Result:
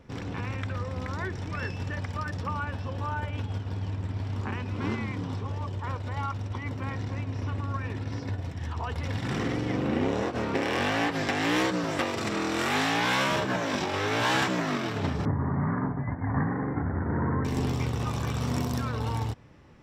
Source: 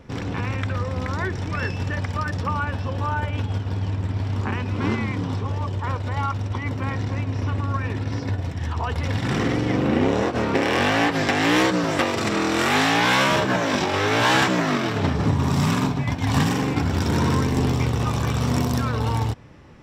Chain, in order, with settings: 15.25–17.45 s: steep low-pass 2 kHz 96 dB/octave; trim -7 dB

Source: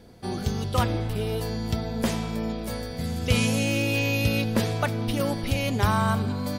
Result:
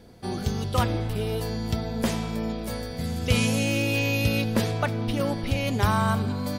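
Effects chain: 4.71–5.67 s: treble shelf 6.6 kHz -8 dB

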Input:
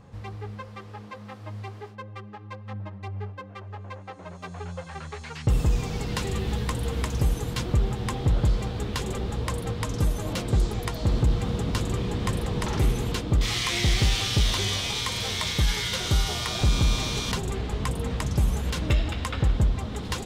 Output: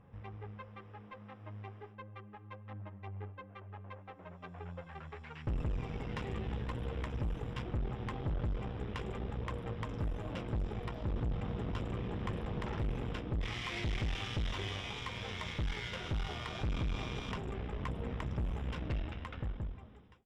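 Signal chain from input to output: fade out at the end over 1.56 s; Savitzky-Golay filter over 25 samples; valve stage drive 25 dB, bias 0.7; trim -6 dB

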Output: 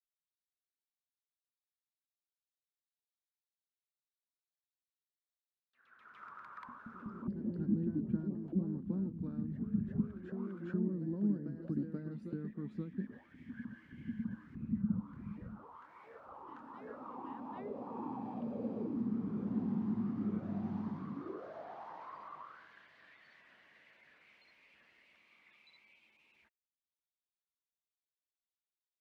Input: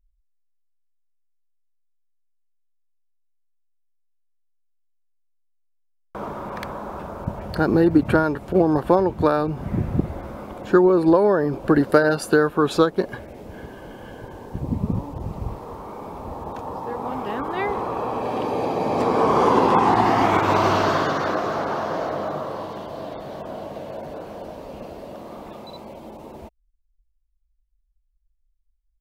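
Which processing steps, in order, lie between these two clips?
amplifier tone stack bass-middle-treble 6-0-2; auto-wah 210–3800 Hz, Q 7.9, down, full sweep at -40.5 dBFS; ever faster or slower copies 188 ms, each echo +1 st, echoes 3, each echo -6 dB; trim +15 dB

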